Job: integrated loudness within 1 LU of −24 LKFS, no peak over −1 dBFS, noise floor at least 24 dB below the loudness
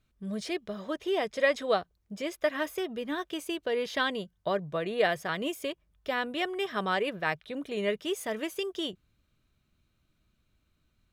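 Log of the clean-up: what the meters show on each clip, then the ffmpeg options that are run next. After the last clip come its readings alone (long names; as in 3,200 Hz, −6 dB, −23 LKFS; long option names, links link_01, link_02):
integrated loudness −31.5 LKFS; sample peak −12.0 dBFS; target loudness −24.0 LKFS
→ -af "volume=7.5dB"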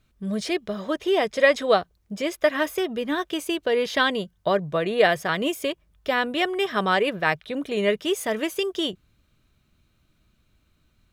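integrated loudness −24.0 LKFS; sample peak −4.5 dBFS; background noise floor −67 dBFS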